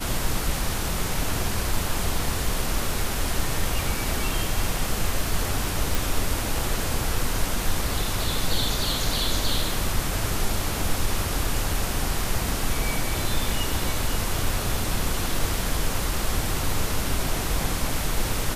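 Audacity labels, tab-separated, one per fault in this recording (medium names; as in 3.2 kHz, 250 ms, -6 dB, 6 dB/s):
5.950000	5.950000	pop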